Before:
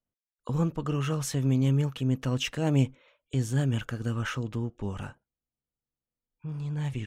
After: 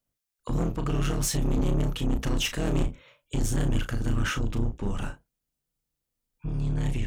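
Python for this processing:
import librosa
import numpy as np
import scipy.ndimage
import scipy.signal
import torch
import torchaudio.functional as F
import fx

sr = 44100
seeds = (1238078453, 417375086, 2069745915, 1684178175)

y = fx.octave_divider(x, sr, octaves=2, level_db=2.0)
y = fx.high_shelf(y, sr, hz=4400.0, db=6.5)
y = 10.0 ** (-26.5 / 20.0) * np.tanh(y / 10.0 ** (-26.5 / 20.0))
y = fx.doubler(y, sr, ms=35.0, db=-8.5)
y = y * 10.0 ** (4.0 / 20.0)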